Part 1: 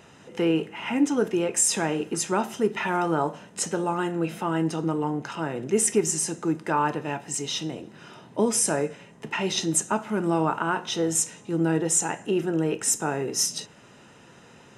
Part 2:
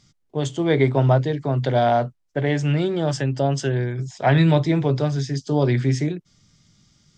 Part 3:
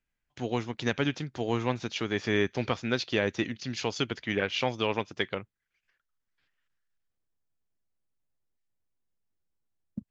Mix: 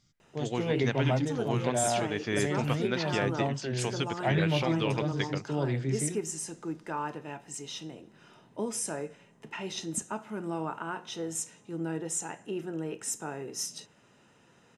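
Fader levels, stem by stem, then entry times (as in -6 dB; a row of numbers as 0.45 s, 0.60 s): -10.5 dB, -11.0 dB, -3.5 dB; 0.20 s, 0.00 s, 0.00 s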